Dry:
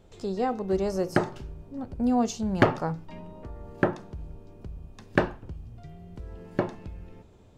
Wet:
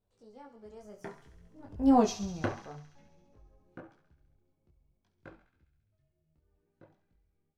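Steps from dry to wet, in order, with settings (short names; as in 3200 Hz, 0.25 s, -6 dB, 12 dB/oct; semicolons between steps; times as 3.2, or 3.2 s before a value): Doppler pass-by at 1.98, 35 m/s, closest 2.8 m; thinning echo 68 ms, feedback 77%, high-pass 1100 Hz, level -11 dB; detuned doubles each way 20 cents; gain +6 dB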